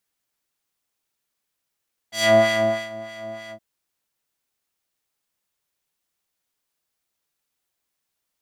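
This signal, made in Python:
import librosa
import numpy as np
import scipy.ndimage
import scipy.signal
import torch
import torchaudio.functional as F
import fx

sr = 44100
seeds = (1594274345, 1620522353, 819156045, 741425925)

y = fx.sub_patch_wobble(sr, seeds[0], note=57, wave='triangle', wave2='square', interval_st=19, level2_db=-1.5, sub_db=-2.0, noise_db=-13, kind='bandpass', cutoff_hz=600.0, q=0.85, env_oct=2.5, env_decay_s=0.27, env_sustain_pct=40, attack_ms=116.0, decay_s=0.66, sustain_db=-21, release_s=0.08, note_s=1.39, lfo_hz=3.2, wobble_oct=0.9)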